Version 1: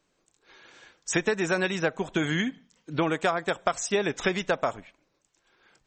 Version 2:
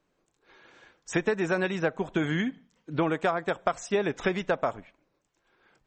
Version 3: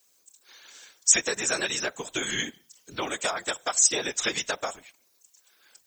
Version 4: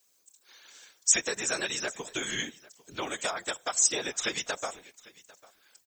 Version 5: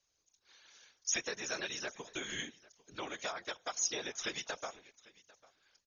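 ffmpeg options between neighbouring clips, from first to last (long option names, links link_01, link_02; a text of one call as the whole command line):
ffmpeg -i in.wav -af "highshelf=frequency=3200:gain=-11.5" out.wav
ffmpeg -i in.wav -af "afftfilt=real='hypot(re,im)*cos(2*PI*random(0))':imag='hypot(re,im)*sin(2*PI*random(1))':win_size=512:overlap=0.75,crystalizer=i=7.5:c=0,bass=frequency=250:gain=-8,treble=frequency=4000:gain=13" out.wav
ffmpeg -i in.wav -af "aecho=1:1:798:0.075,volume=-3.5dB" out.wav
ffmpeg -i in.wav -af "volume=-7.5dB" -ar 48000 -c:a ac3 -b:a 32k out.ac3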